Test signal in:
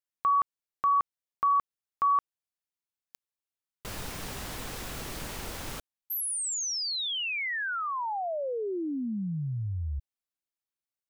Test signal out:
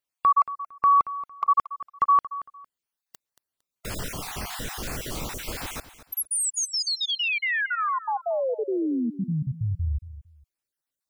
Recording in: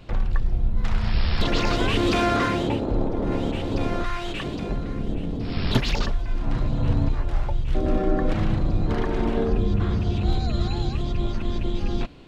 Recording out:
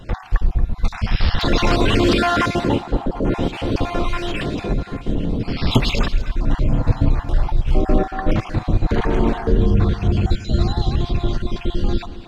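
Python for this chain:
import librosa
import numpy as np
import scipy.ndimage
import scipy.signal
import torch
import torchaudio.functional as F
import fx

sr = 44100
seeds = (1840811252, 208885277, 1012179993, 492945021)

y = fx.spec_dropout(x, sr, seeds[0], share_pct=34)
y = fx.echo_feedback(y, sr, ms=228, feedback_pct=23, wet_db=-15.0)
y = y * librosa.db_to_amplitude(6.5)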